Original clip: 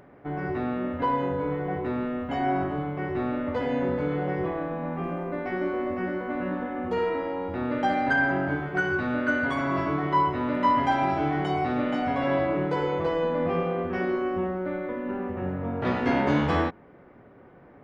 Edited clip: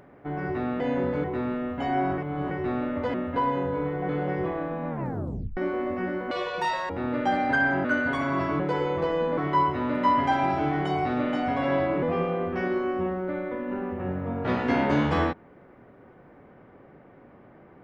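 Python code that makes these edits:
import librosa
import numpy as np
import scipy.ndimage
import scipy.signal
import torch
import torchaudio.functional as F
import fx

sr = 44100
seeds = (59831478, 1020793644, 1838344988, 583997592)

y = fx.edit(x, sr, fx.swap(start_s=0.8, length_s=0.95, other_s=3.65, other_length_s=0.44),
    fx.reverse_span(start_s=2.69, length_s=0.33),
    fx.tape_stop(start_s=4.9, length_s=0.67),
    fx.speed_span(start_s=6.31, length_s=1.16, speed=1.98),
    fx.cut(start_s=8.42, length_s=0.8),
    fx.move(start_s=12.62, length_s=0.78, to_s=9.97), tone=tone)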